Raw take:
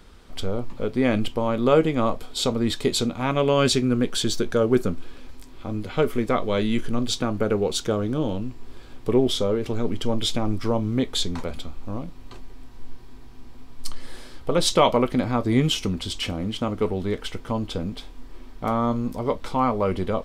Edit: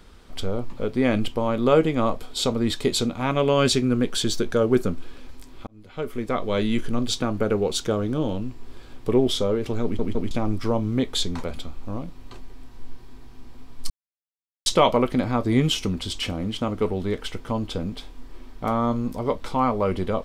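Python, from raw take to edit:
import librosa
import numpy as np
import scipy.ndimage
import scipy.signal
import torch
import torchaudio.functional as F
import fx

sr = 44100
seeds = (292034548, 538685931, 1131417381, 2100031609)

y = fx.edit(x, sr, fx.fade_in_span(start_s=5.67, length_s=0.93),
    fx.stutter_over(start_s=9.83, slice_s=0.16, count=3),
    fx.silence(start_s=13.9, length_s=0.76), tone=tone)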